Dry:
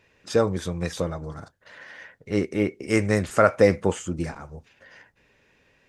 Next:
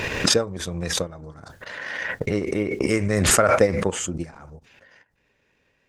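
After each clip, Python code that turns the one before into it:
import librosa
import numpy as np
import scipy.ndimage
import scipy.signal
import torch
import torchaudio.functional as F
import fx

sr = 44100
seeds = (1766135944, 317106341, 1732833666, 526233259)

y = fx.transient(x, sr, attack_db=6, sustain_db=-10)
y = fx.pre_swell(y, sr, db_per_s=23.0)
y = F.gain(torch.from_numpy(y), -5.5).numpy()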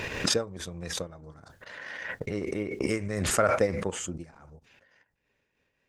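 y = fx.am_noise(x, sr, seeds[0], hz=5.7, depth_pct=60)
y = F.gain(torch.from_numpy(y), -4.5).numpy()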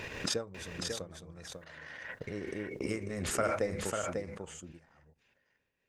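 y = x + 10.0 ** (-5.0 / 20.0) * np.pad(x, (int(545 * sr / 1000.0), 0))[:len(x)]
y = F.gain(torch.from_numpy(y), -7.5).numpy()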